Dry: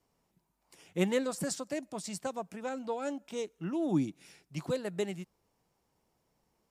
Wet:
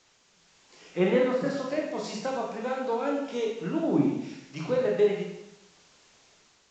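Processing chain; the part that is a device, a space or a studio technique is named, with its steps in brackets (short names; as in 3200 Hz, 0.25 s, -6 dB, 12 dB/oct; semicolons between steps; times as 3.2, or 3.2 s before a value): bell 360 Hz -3.5 dB 0.86 oct; treble ducked by the level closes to 2300 Hz, closed at -30.5 dBFS; filmed off a television (BPF 190–7100 Hz; bell 410 Hz +6.5 dB 0.47 oct; reverb RT60 0.80 s, pre-delay 17 ms, DRR -2 dB; white noise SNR 26 dB; AGC gain up to 5 dB; gain -1.5 dB; AAC 32 kbps 16000 Hz)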